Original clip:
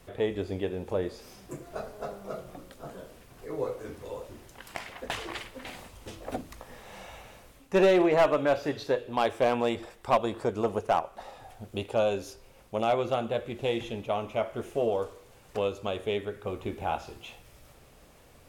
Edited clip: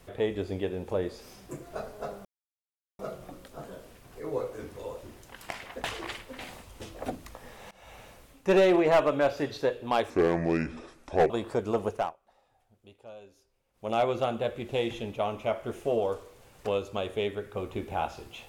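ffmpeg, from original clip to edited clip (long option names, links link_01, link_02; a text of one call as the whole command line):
ffmpeg -i in.wav -filter_complex "[0:a]asplit=7[link_01][link_02][link_03][link_04][link_05][link_06][link_07];[link_01]atrim=end=2.25,asetpts=PTS-STARTPTS,afade=type=out:start_time=2.246:duration=0.004:curve=hsin,apad=pad_dur=0.74[link_08];[link_02]atrim=start=2.25:end=6.97,asetpts=PTS-STARTPTS,afade=type=in:duration=0.004:curve=hsin,afade=type=out:start_time=4.716:duration=0.004:curve=hsin:silence=0.0630957[link_09];[link_03]atrim=start=6.97:end=9.364,asetpts=PTS-STARTPTS,afade=type=in:duration=0.28:silence=0.0630957[link_10];[link_04]atrim=start=9.36:end=10.2,asetpts=PTS-STARTPTS,asetrate=30870,aresample=44100[link_11];[link_05]atrim=start=10.196:end=11.05,asetpts=PTS-STARTPTS,afade=type=out:start_time=0.624:duration=0.23:silence=0.0891251[link_12];[link_06]atrim=start=11.05:end=12.63,asetpts=PTS-STARTPTS,volume=-21dB[link_13];[link_07]atrim=start=12.63,asetpts=PTS-STARTPTS,afade=type=in:duration=0.23:silence=0.0891251[link_14];[link_08][link_09][link_10]concat=n=3:v=0:a=1[link_15];[link_15][link_11]acrossfade=duration=0.004:curve1=hsin:curve2=hsin[link_16];[link_12][link_13][link_14]concat=n=3:v=0:a=1[link_17];[link_16][link_17]acrossfade=duration=0.004:curve1=hsin:curve2=hsin" out.wav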